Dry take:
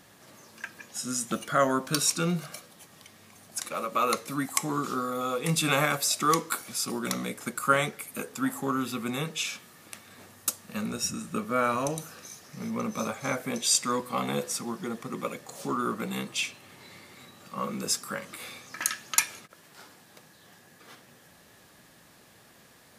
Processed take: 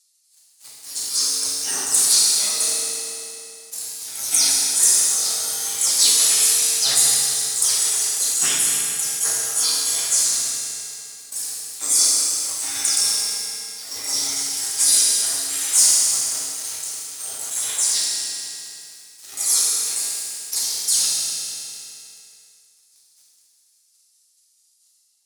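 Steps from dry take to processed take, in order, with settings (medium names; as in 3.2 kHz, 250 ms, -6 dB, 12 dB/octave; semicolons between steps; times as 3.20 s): delay that grows with frequency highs early, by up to 176 ms; high-pass 68 Hz 24 dB/octave; spectral gate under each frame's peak -20 dB weak; high-order bell 7.1 kHz +15.5 dB; waveshaping leveller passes 3; tilt EQ +1.5 dB/octave; on a send: bucket-brigade echo 66 ms, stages 2048, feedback 78%, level -11 dB; on the sum: FDN reverb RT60 2.3 s, low-frequency decay 0.9×, high-frequency decay 0.9×, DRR -3.5 dB; tape speed -9%; decay stretcher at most 22 dB/s; trim -9 dB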